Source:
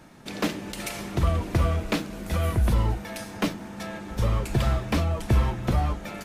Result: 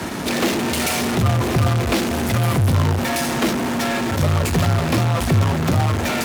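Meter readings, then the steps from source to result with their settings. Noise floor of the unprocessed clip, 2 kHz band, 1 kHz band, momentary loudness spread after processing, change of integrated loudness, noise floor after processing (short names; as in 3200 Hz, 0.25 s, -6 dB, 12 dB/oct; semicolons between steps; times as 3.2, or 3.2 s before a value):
-40 dBFS, +11.0 dB, +9.5 dB, 3 LU, +8.0 dB, -23 dBFS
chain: in parallel at -8.5 dB: fuzz box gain 50 dB, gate -57 dBFS; on the sum: frequency shift +37 Hz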